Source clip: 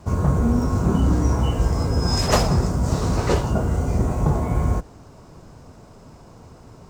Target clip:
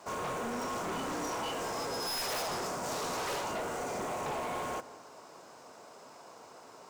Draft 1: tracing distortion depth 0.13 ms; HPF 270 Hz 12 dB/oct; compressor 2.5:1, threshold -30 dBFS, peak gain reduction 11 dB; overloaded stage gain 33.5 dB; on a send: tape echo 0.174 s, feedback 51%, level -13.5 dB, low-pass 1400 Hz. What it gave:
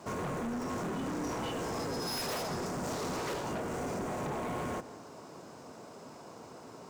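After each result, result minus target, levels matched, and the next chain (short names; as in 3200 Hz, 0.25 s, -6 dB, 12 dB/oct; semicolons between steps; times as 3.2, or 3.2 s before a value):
compressor: peak gain reduction +11 dB; 250 Hz band +5.5 dB
tracing distortion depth 0.13 ms; HPF 270 Hz 12 dB/oct; overloaded stage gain 33.5 dB; on a send: tape echo 0.174 s, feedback 51%, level -13.5 dB, low-pass 1400 Hz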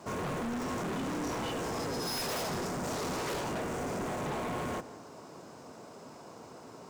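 250 Hz band +5.5 dB
tracing distortion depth 0.13 ms; HPF 560 Hz 12 dB/oct; overloaded stage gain 33.5 dB; on a send: tape echo 0.174 s, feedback 51%, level -13.5 dB, low-pass 1400 Hz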